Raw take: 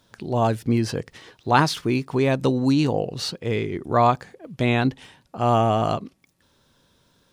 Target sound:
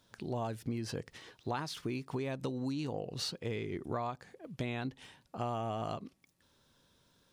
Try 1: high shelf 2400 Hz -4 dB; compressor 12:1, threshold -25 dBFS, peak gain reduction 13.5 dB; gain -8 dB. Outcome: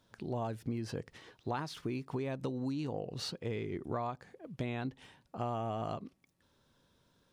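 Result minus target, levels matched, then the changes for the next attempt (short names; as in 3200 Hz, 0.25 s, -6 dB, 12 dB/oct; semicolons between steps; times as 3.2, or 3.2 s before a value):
4000 Hz band -3.0 dB
change: high shelf 2400 Hz +2 dB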